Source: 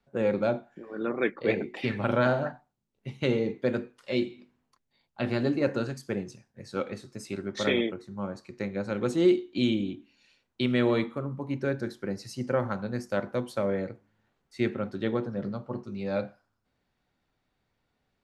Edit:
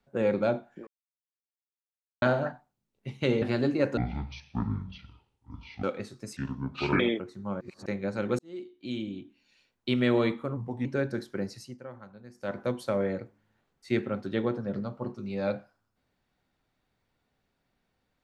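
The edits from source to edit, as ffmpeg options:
-filter_complex "[0:a]asplit=15[a][b][c][d][e][f][g][h][i][j][k][l][m][n][o];[a]atrim=end=0.87,asetpts=PTS-STARTPTS,afade=t=out:st=0.866:d=0.004:c=hsin[p];[b]atrim=start=0.87:end=2.22,asetpts=PTS-STARTPTS,volume=0[q];[c]atrim=start=2.22:end=3.422,asetpts=PTS-STARTPTS,afade=t=in:d=0.004:c=hsin[r];[d]atrim=start=5.238:end=5.794[s];[e]atrim=start=5.79:end=6.76,asetpts=PTS-STARTPTS,asetrate=22932,aresample=44100,atrim=end_sample=82263,asetpts=PTS-STARTPTS[t];[f]atrim=start=6.756:end=7.294[u];[g]atrim=start=7.29:end=7.72,asetpts=PTS-STARTPTS,asetrate=29988,aresample=44100[v];[h]atrim=start=7.716:end=8.332[w];[i]atrim=start=8.328:end=8.582,asetpts=PTS-STARTPTS,areverse[x];[j]atrim=start=8.578:end=9.11,asetpts=PTS-STARTPTS,afade=t=out:st=0.528:d=0.004:c=hsin[y];[k]atrim=start=9.11:end=11.294,asetpts=PTS-STARTPTS,afade=t=in:d=1.55[z];[l]atrim=start=11.29:end=11.54,asetpts=PTS-STARTPTS,asetrate=38808,aresample=44100,atrim=end_sample=12528,asetpts=PTS-STARTPTS[aa];[m]atrim=start=11.536:end=12.47,asetpts=PTS-STARTPTS,afade=t=out:st=0.624:d=0.31:silence=0.149624[ab];[n]atrim=start=12.47:end=13.02,asetpts=PTS-STARTPTS,volume=-16.5dB[ac];[o]atrim=start=13.02,asetpts=PTS-STARTPTS,afade=t=in:d=0.31:silence=0.149624[ad];[p][q][r]concat=n=3:v=0:a=1[ae];[ae][s]acrossfade=d=0.004:c1=hsin:c2=hsin[af];[af][t]acrossfade=d=0.004:c1=hsin:c2=hsin[ag];[ag][u]acrossfade=d=0.004:c1=hsin:c2=hsin[ah];[ah][v]acrossfade=d=0.004:c1=hsin:c2=hsin[ai];[ai][w]acrossfade=d=0.004:c1=hsin:c2=hsin[aj];[aj][x]acrossfade=d=0.004:c1=hsin:c2=hsin[ak];[y][z]concat=n=2:v=0:a=1[al];[ak][al]acrossfade=d=0.004:c1=hsin:c2=hsin[am];[am][aa]acrossfade=d=0.004:c1=hsin:c2=hsin[an];[ab][ac][ad]concat=n=3:v=0:a=1[ao];[an][ao]acrossfade=d=0.004:c1=hsin:c2=hsin"

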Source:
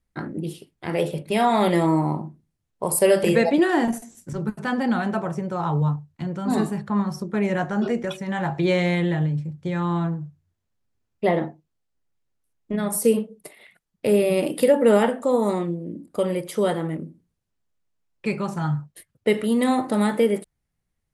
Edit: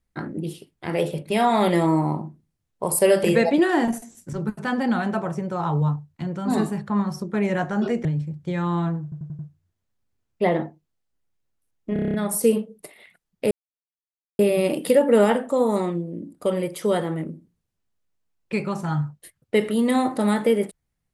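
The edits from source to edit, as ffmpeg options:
-filter_complex "[0:a]asplit=14[a][b][c][d][e][f][g][h][i][j][k][l][m][n];[a]atrim=end=8.052[o];[b]atrim=start=9.228:end=10.302[p];[c]atrim=start=10.208:end=10.302[q];[d]atrim=start=10.208:end=10.302[r];[e]atrim=start=10.208:end=10.302[s];[f]atrim=start=10.208:end=12.782[t];[g]atrim=start=12.748:end=12.782[u];[h]atrim=start=12.748:end=12.782[v];[i]atrim=start=12.748:end=12.782[w];[j]atrim=start=12.748:end=12.782[x];[k]atrim=start=12.748:end=12.782[y];[l]atrim=start=12.748:end=12.782[z];[m]atrim=start=12.748:end=14.12,asetpts=PTS-STARTPTS,afade=t=out:st=1.368:d=0.004:c=hsin,apad=pad_dur=0.88[aa];[n]atrim=start=14.12,asetpts=PTS-STARTPTS,afade=t=in:d=0.004:c=hsin[ab];[o][p]acrossfade=d=0.004:c1=hsin:c2=hsin[ac];[ac][q]acrossfade=d=0.004:c1=hsin:c2=hsin[ad];[ad][r]acrossfade=d=0.004:c1=hsin:c2=hsin[ae];[ae][s]acrossfade=d=0.004:c1=hsin:c2=hsin[af];[af][t]acrossfade=d=0.004:c1=hsin:c2=hsin[ag];[ag][u]acrossfade=d=0.004:c1=hsin:c2=hsin[ah];[ah][v]acrossfade=d=0.004:c1=hsin:c2=hsin[ai];[ai][w]acrossfade=d=0.004:c1=hsin:c2=hsin[aj];[aj][x]acrossfade=d=0.004:c1=hsin:c2=hsin[ak];[ak][y]acrossfade=d=0.004:c1=hsin:c2=hsin[al];[al][z]acrossfade=d=0.004:c1=hsin:c2=hsin[am];[aa][ab]concat=n=2:v=0:a=1[an];[am][an]acrossfade=d=0.004:c1=hsin:c2=hsin"

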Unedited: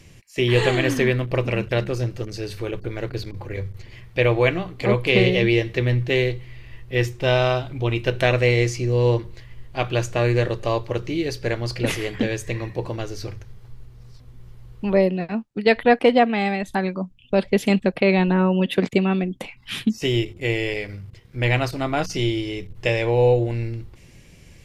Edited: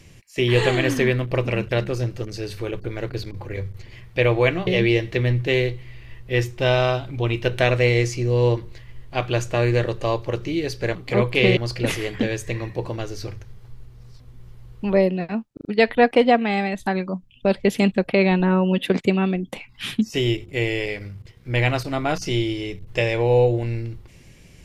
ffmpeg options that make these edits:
-filter_complex "[0:a]asplit=7[a][b][c][d][e][f][g];[a]atrim=end=4.672[h];[b]atrim=start=5.288:end=11.572[i];[c]atrim=start=4.668:end=5.292[j];[d]atrim=start=11.568:end=15.572[k];[e]atrim=start=15.528:end=15.572[l];[f]atrim=start=15.528:end=15.572[m];[g]atrim=start=15.528[n];[h][i]acrossfade=d=0.004:c1=hsin:c2=hsin[o];[o][j]acrossfade=d=0.004:c1=hsin:c2=hsin[p];[p][k]acrossfade=d=0.004:c1=hsin:c2=hsin[q];[q][l]acrossfade=d=0.004:c1=hsin:c2=hsin[r];[r][m]acrossfade=d=0.004:c1=hsin:c2=hsin[s];[s][n]acrossfade=d=0.004:c1=hsin:c2=hsin"

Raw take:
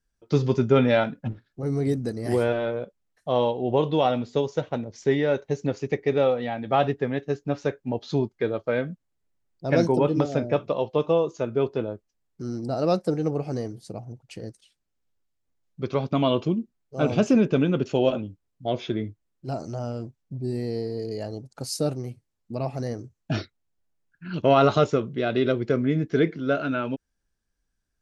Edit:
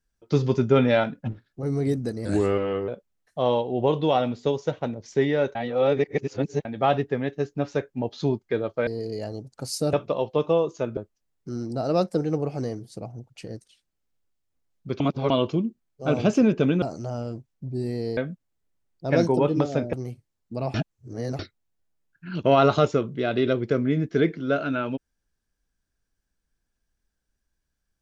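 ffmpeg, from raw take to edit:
-filter_complex "[0:a]asplit=15[a][b][c][d][e][f][g][h][i][j][k][l][m][n][o];[a]atrim=end=2.254[p];[b]atrim=start=2.25:end=2.78,asetpts=PTS-STARTPTS,asetrate=37044,aresample=44100[q];[c]atrim=start=2.776:end=5.452[r];[d]atrim=start=5.448:end=6.552,asetpts=PTS-STARTPTS,areverse[s];[e]atrim=start=6.548:end=8.772[t];[f]atrim=start=20.858:end=21.922[u];[g]atrim=start=10.528:end=11.572[v];[h]atrim=start=11.898:end=15.932[w];[i]atrim=start=15.928:end=16.232,asetpts=PTS-STARTPTS,areverse[x];[j]atrim=start=16.228:end=17.752[y];[k]atrim=start=19.508:end=20.862[z];[l]atrim=start=8.768:end=10.532[aa];[m]atrim=start=21.918:end=22.732[ab];[n]atrim=start=22.728:end=23.382,asetpts=PTS-STARTPTS,areverse[ac];[o]atrim=start=23.378[ad];[p][q]acrossfade=d=0.004:c1=hsin:c2=hsin[ae];[ae][r]acrossfade=d=0.004:c1=hsin:c2=hsin[af];[af][s]acrossfade=d=0.004:c1=hsin:c2=hsin[ag];[ag][t]acrossfade=d=0.004:c1=hsin:c2=hsin[ah];[ah][u]acrossfade=d=0.004:c1=hsin:c2=hsin[ai];[ai][v]acrossfade=d=0.004:c1=hsin:c2=hsin[aj];[aj][w]acrossfade=d=0.004:c1=hsin:c2=hsin[ak];[ak][x]acrossfade=d=0.004:c1=hsin:c2=hsin[al];[al][y]acrossfade=d=0.004:c1=hsin:c2=hsin[am];[am][z]acrossfade=d=0.004:c1=hsin:c2=hsin[an];[an][aa]acrossfade=d=0.004:c1=hsin:c2=hsin[ao];[ao][ab]acrossfade=d=0.004:c1=hsin:c2=hsin[ap];[ap][ac]acrossfade=d=0.004:c1=hsin:c2=hsin[aq];[aq][ad]acrossfade=d=0.004:c1=hsin:c2=hsin"

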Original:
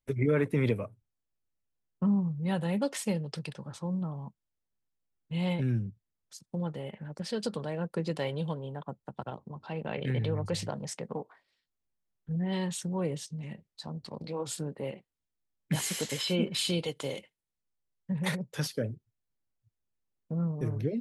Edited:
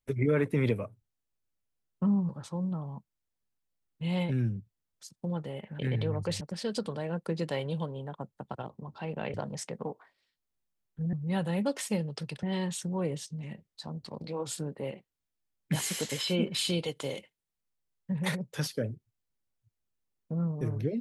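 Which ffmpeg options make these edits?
-filter_complex "[0:a]asplit=7[a][b][c][d][e][f][g];[a]atrim=end=2.292[h];[b]atrim=start=3.588:end=7.092[i];[c]atrim=start=10.018:end=10.642[j];[d]atrim=start=7.088:end=10.022[k];[e]atrim=start=10.638:end=12.432[l];[f]atrim=start=2.288:end=3.592[m];[g]atrim=start=12.428[n];[h][i]acrossfade=d=0.004:c1=hsin:c2=hsin[o];[o][j]acrossfade=d=0.004:c1=hsin:c2=hsin[p];[p][k]acrossfade=d=0.004:c1=hsin:c2=hsin[q];[q][l]acrossfade=d=0.004:c1=hsin:c2=hsin[r];[r][m]acrossfade=d=0.004:c1=hsin:c2=hsin[s];[s][n]acrossfade=d=0.004:c1=hsin:c2=hsin"

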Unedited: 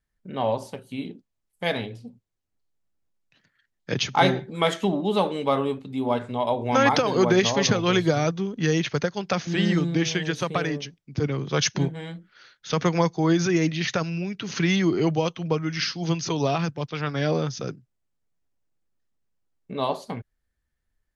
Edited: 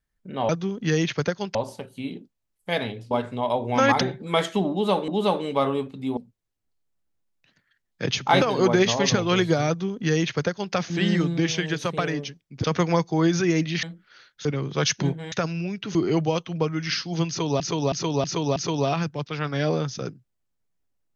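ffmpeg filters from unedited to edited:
-filter_complex "[0:a]asplit=17[a][b][c][d][e][f][g][h][i][j][k][l][m][n][o][p][q];[a]atrim=end=0.492[r];[b]atrim=start=8.248:end=9.312[s];[c]atrim=start=0.488:end=2.052[t];[d]atrim=start=6.078:end=6.982[u];[e]atrim=start=4.288:end=5.362[v];[f]atrim=start=4.988:end=6.082[w];[g]atrim=start=2.048:end=4.292[x];[h]atrim=start=6.978:end=11.212[y];[i]atrim=start=12.698:end=13.892[z];[j]atrim=start=12.078:end=12.702[aa];[k]atrim=start=11.208:end=12.082[ab];[l]atrim=start=13.888:end=14.522[ac];[m]atrim=start=14.848:end=16.502[ad];[n]atrim=start=16.178:end=16.502[ae];[o]atrim=start=16.178:end=16.502[af];[p]atrim=start=16.178:end=16.502[ag];[q]atrim=start=16.178[ah];[r][s]acrossfade=d=0.004:c1=hsin:c2=hsin[ai];[ai][t]acrossfade=d=0.004:c1=hsin:c2=hsin[aj];[aj][u]acrossfade=d=0.004:c1=hsin:c2=hsin[ak];[ak][v]acrossfade=d=0.004:c1=hsin:c2=hsin[al];[al][w]acrossfade=d=0.004:c1=hsin:c2=hsin[am];[am][x]acrossfade=d=0.004:c1=hsin:c2=hsin[an];[an][y]acrossfade=d=0.004:c1=hsin:c2=hsin[ao];[ao][z]acrossfade=d=0.004:c1=hsin:c2=hsin[ap];[ap][aa]acrossfade=d=0.004:c1=hsin:c2=hsin[aq];[aq][ab]acrossfade=d=0.004:c1=hsin:c2=hsin[ar];[ar][ac]acrossfade=d=0.004:c1=hsin:c2=hsin[as];[as][ad]acrossfade=d=0.004:c1=hsin:c2=hsin[at];[at][ae]acrossfade=d=0.004:c1=hsin:c2=hsin[au];[au][af]acrossfade=d=0.004:c1=hsin:c2=hsin[av];[av][ag]acrossfade=d=0.004:c1=hsin:c2=hsin[aw];[aw][ah]acrossfade=d=0.004:c1=hsin:c2=hsin"

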